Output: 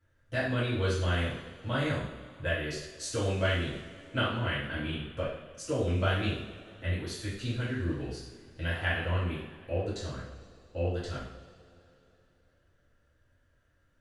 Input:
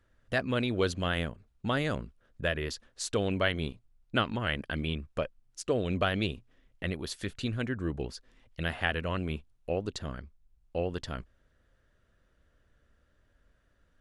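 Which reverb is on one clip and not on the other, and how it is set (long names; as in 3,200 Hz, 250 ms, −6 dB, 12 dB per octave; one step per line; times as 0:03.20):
coupled-rooms reverb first 0.65 s, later 3.1 s, from −18 dB, DRR −10 dB
level −11 dB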